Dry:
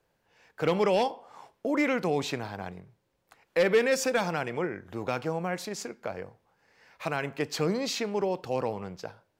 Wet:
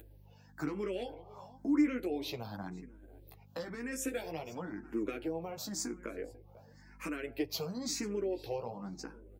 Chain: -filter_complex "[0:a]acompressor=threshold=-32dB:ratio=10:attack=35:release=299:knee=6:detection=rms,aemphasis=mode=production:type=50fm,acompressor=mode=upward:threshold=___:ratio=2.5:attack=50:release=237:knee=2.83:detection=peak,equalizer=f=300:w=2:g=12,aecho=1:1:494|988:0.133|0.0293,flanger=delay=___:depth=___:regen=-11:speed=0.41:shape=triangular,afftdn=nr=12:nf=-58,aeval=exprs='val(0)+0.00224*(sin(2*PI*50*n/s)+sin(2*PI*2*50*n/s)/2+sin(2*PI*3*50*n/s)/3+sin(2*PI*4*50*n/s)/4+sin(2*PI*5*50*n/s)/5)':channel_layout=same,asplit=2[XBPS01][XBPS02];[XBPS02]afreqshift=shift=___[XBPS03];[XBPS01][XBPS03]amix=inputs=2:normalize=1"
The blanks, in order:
-52dB, 8.6, 9.4, 0.96